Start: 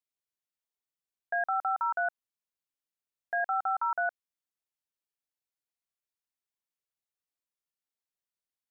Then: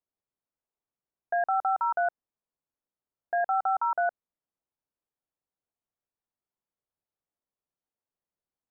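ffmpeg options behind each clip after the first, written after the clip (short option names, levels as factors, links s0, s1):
-af "lowpass=1000,volume=2.11"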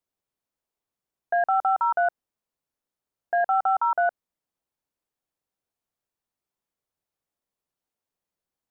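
-af "acontrast=89,volume=0.708"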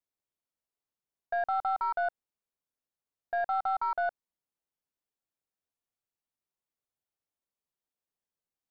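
-af "aeval=exprs='0.178*(cos(1*acos(clip(val(0)/0.178,-1,1)))-cos(1*PI/2))+0.00631*(cos(4*acos(clip(val(0)/0.178,-1,1)))-cos(4*PI/2))':c=same,volume=0.422"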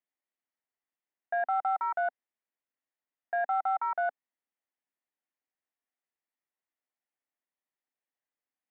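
-af "highpass=f=230:w=0.5412,highpass=f=230:w=1.3066,equalizer=f=260:t=q:w=4:g=3,equalizer=f=430:t=q:w=4:g=-4,equalizer=f=760:t=q:w=4:g=3,equalizer=f=1900:t=q:w=4:g=8,lowpass=f=3000:w=0.5412,lowpass=f=3000:w=1.3066,volume=0.841"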